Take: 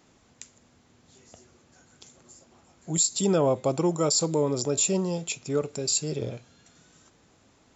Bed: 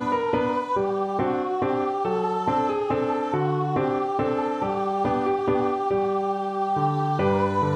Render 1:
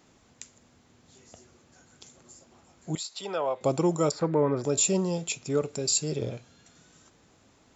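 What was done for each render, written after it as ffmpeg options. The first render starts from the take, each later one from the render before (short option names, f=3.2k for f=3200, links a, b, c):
-filter_complex "[0:a]asettb=1/sr,asplit=3[a][b][c];[a]atrim=end=2.954[d];[b]atrim=start=2.95:end=3.61,asetpts=PTS-STARTPTS,afade=t=in:d=0.004:c=qsin,afade=t=out:st=0.656:d=0.004:c=qsin,acrossover=split=550 4300:gain=0.0708 1 0.0631[e][f][g];[e][f][g]amix=inputs=3:normalize=0[h];[c]atrim=start=3.606[i];[d][h]acrossfade=d=0.004:c1=hsin:c2=qsin[j];[j][i]acrossfade=d=0.004:c1=qsin:c2=hsin,asettb=1/sr,asplit=3[k][l][m];[k]atrim=end=4.114[n];[l]atrim=start=4.11:end=4.64,asetpts=PTS-STARTPTS,afade=t=in:d=0.004:c=qsin,afade=t=out:st=0.526:d=0.004:c=qsin,lowpass=f=1.7k:t=q:w=3.6[o];[m]atrim=start=4.636[p];[n][o]acrossfade=d=0.004:c1=hsin:c2=qsin[q];[q][p]acrossfade=d=0.004:c1=qsin:c2=hsin"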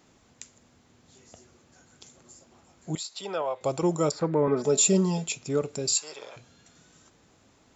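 -filter_complex "[0:a]asettb=1/sr,asplit=3[a][b][c];[a]atrim=end=3.424[d];[b]atrim=start=3.42:end=3.83,asetpts=PTS-STARTPTS,afade=t=in:d=0.004:c=qsin,afade=t=out:st=0.406:d=0.004:c=qsin,equalizer=f=220:t=o:w=1.4:g=-8.5[e];[c]atrim=start=3.826[f];[d][e]acrossfade=d=0.004:c1=hsin:c2=qsin[g];[g][f]acrossfade=d=0.004:c1=qsin:c2=hsin,asettb=1/sr,asplit=3[h][i][j];[h]atrim=end=4.474[k];[i]atrim=start=4.47:end=5.26,asetpts=PTS-STARTPTS,afade=t=in:d=0.004:c=qsin,afade=t=out:st=0.786:d=0.004:c=qsin,aecho=1:1:4.7:0.89,atrim=end_sample=34839[l];[j]atrim=start=5.256[m];[k][l]acrossfade=d=0.004:c1=hsin:c2=qsin[n];[n][m]acrossfade=d=0.004:c1=qsin:c2=hsin,asplit=3[o][p][q];[o]afade=t=out:st=5.93:d=0.02[r];[p]highpass=f=1k:t=q:w=2.5,afade=t=in:st=5.93:d=0.02,afade=t=out:st=6.36:d=0.02[s];[q]afade=t=in:st=6.36:d=0.02[t];[r][s][t]amix=inputs=3:normalize=0"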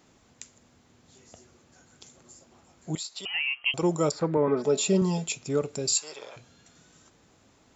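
-filter_complex "[0:a]asettb=1/sr,asplit=3[a][b][c];[a]atrim=end=3.254[d];[b]atrim=start=3.25:end=3.74,asetpts=PTS-STARTPTS,afade=t=in:d=0.004:c=qsin,afade=t=out:st=0.486:d=0.004:c=qsin,lowpass=f=2.8k:t=q:w=0.5098,lowpass=f=2.8k:t=q:w=0.6013,lowpass=f=2.8k:t=q:w=0.9,lowpass=f=2.8k:t=q:w=2.563,afreqshift=-3300[e];[c]atrim=start=3.736[f];[d][e]acrossfade=d=0.004:c1=hsin:c2=qsin[g];[g][f]acrossfade=d=0.004:c1=qsin:c2=hsin,asettb=1/sr,asplit=3[h][i][j];[h]atrim=end=4.374[k];[i]atrim=start=4.37:end=5.02,asetpts=PTS-STARTPTS,afade=t=in:d=0.004:c=qsin,afade=t=out:st=0.646:d=0.004:c=qsin,highpass=140,lowpass=4.8k[l];[j]atrim=start=5.016[m];[k][l]acrossfade=d=0.004:c1=hsin:c2=qsin[n];[n][m]acrossfade=d=0.004:c1=qsin:c2=hsin"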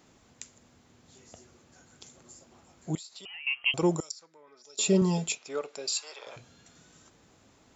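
-filter_complex "[0:a]asettb=1/sr,asplit=3[a][b][c];[a]atrim=end=2.954[d];[b]atrim=start=2.95:end=3.47,asetpts=PTS-STARTPTS,afade=t=in:d=0.004:c=qsin,afade=t=out:st=0.516:d=0.004:c=qsin,acompressor=threshold=-45dB:ratio=3:attack=3.2:release=140:knee=1:detection=peak[e];[c]atrim=start=3.466[f];[d][e]acrossfade=d=0.004:c1=hsin:c2=qsin[g];[g][f]acrossfade=d=0.004:c1=qsin:c2=hsin,asettb=1/sr,asplit=3[h][i][j];[h]atrim=end=4.004[k];[i]atrim=start=4:end=4.79,asetpts=PTS-STARTPTS,afade=t=in:d=0.004:c=qsin,afade=t=out:st=0.786:d=0.004:c=qsin,bandpass=f=5.9k:t=q:w=3.5[l];[j]atrim=start=4.786[m];[k][l]acrossfade=d=0.004:c1=hsin:c2=qsin[n];[n][m]acrossfade=d=0.004:c1=qsin:c2=hsin,asettb=1/sr,asplit=3[o][p][q];[o]atrim=end=5.354[r];[p]atrim=start=5.35:end=6.27,asetpts=PTS-STARTPTS,afade=t=in:d=0.004:c=qsin,afade=t=out:st=0.916:d=0.004:c=qsin,highpass=620,lowpass=5.1k[s];[q]atrim=start=6.266[t];[r][s]acrossfade=d=0.004:c1=hsin:c2=qsin[u];[u][t]acrossfade=d=0.004:c1=qsin:c2=hsin"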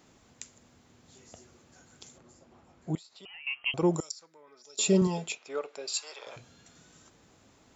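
-filter_complex "[0:a]asettb=1/sr,asplit=3[a][b][c];[a]atrim=end=2.184[d];[b]atrim=start=2.18:end=3.94,asetpts=PTS-STARTPTS,afade=t=in:d=0.004:c=qsin,afade=t=out:st=1.756:d=0.004:c=qsin,aemphasis=mode=reproduction:type=75kf[e];[c]atrim=start=3.936[f];[d][e]acrossfade=d=0.004:c1=hsin:c2=qsin[g];[g][f]acrossfade=d=0.004:c1=qsin:c2=hsin,asettb=1/sr,asplit=3[h][i][j];[h]atrim=end=5.074[k];[i]atrim=start=5.07:end=5.94,asetpts=PTS-STARTPTS,afade=t=in:d=0.004:c=qsin,afade=t=out:st=0.866:d=0.004:c=qsin,bass=f=250:g=-8,treble=f=4k:g=-8[l];[j]atrim=start=5.936[m];[k][l]acrossfade=d=0.004:c1=hsin:c2=qsin[n];[n][m]acrossfade=d=0.004:c1=qsin:c2=hsin"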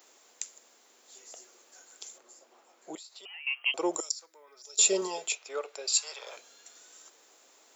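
-af "highpass=f=390:w=0.5412,highpass=f=390:w=1.3066,aemphasis=mode=production:type=50kf"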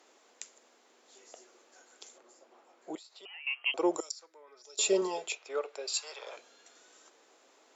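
-af "highpass=230,aemphasis=mode=reproduction:type=bsi"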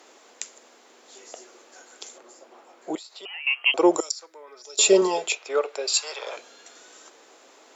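-af "volume=10.5dB"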